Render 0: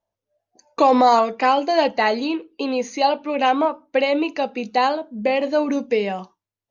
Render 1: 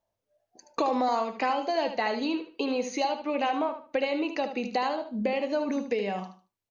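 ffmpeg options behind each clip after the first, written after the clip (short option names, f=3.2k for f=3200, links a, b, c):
-filter_complex "[0:a]acompressor=threshold=-28dB:ratio=3,asplit=2[a][b];[b]aecho=0:1:75|150|225:0.355|0.0887|0.0222[c];[a][c]amix=inputs=2:normalize=0"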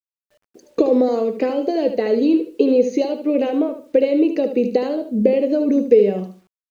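-af "lowshelf=f=640:t=q:w=3:g=11.5,acrusher=bits=9:mix=0:aa=0.000001,volume=-1dB"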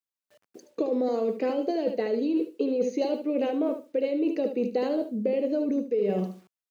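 -af "highpass=120,areverse,acompressor=threshold=-23dB:ratio=10,areverse"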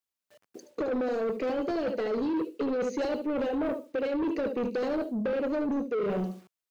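-af "asoftclip=type=tanh:threshold=-27.5dB,volume=2dB"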